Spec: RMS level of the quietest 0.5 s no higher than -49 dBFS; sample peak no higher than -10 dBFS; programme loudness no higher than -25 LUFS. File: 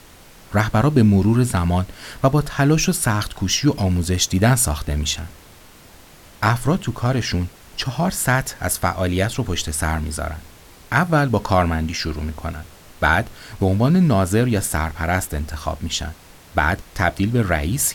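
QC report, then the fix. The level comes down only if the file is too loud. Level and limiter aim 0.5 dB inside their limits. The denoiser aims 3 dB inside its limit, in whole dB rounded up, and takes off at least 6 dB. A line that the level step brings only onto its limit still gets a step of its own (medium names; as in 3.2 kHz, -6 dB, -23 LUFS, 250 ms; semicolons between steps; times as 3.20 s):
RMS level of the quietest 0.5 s -45 dBFS: fail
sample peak -3.0 dBFS: fail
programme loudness -20.0 LUFS: fail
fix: trim -5.5 dB; peak limiter -10.5 dBFS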